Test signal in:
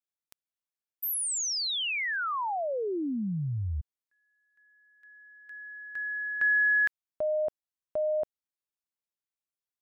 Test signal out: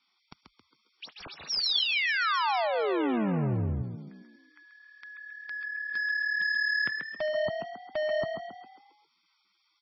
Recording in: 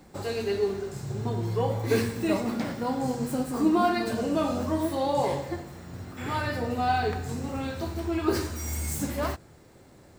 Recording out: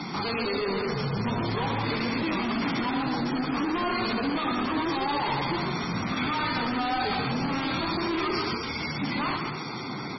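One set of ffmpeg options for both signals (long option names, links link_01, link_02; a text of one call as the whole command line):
ffmpeg -i in.wav -filter_complex "[0:a]acrossover=split=7500[link_01][link_02];[link_02]acompressor=threshold=-54dB:ratio=4:attack=1:release=60[link_03];[link_01][link_03]amix=inputs=2:normalize=0,highpass=frequency=130:width=0.5412,highpass=frequency=130:width=1.3066,bass=frequency=250:gain=9,treble=frequency=4000:gain=6,aecho=1:1:0.9:0.82,acompressor=threshold=-29dB:ratio=3:attack=23:release=23:knee=6:detection=rms,asplit=2[link_04][link_05];[link_05]highpass=frequency=720:poles=1,volume=33dB,asoftclip=type=tanh:threshold=-15.5dB[link_06];[link_04][link_06]amix=inputs=2:normalize=0,lowpass=frequency=5400:poles=1,volume=-6dB,asoftclip=type=tanh:threshold=-23dB,asplit=2[link_07][link_08];[link_08]asplit=6[link_09][link_10][link_11][link_12][link_13][link_14];[link_09]adelay=135,afreqshift=37,volume=-6dB[link_15];[link_10]adelay=270,afreqshift=74,volume=-12.4dB[link_16];[link_11]adelay=405,afreqshift=111,volume=-18.8dB[link_17];[link_12]adelay=540,afreqshift=148,volume=-25.1dB[link_18];[link_13]adelay=675,afreqshift=185,volume=-31.5dB[link_19];[link_14]adelay=810,afreqshift=222,volume=-37.9dB[link_20];[link_15][link_16][link_17][link_18][link_19][link_20]amix=inputs=6:normalize=0[link_21];[link_07][link_21]amix=inputs=2:normalize=0,volume=-3dB" -ar 24000 -c:a libmp3lame -b:a 16k out.mp3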